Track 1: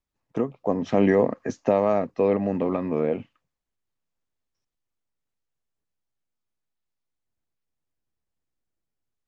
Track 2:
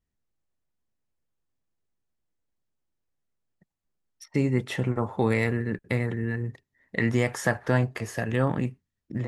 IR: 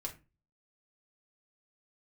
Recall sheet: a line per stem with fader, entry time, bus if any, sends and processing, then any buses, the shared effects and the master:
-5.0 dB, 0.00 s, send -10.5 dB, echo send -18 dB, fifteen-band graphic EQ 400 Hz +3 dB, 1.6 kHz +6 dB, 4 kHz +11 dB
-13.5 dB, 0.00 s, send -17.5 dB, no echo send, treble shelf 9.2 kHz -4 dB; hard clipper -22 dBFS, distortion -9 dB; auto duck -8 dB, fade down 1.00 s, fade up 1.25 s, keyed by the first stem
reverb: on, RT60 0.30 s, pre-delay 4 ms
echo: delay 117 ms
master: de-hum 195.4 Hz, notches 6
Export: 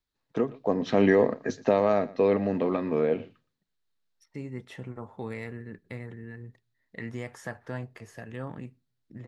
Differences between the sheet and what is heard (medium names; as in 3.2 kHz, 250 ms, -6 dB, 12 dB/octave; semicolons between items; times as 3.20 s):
stem 2: missing hard clipper -22 dBFS, distortion -9 dB; master: missing de-hum 195.4 Hz, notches 6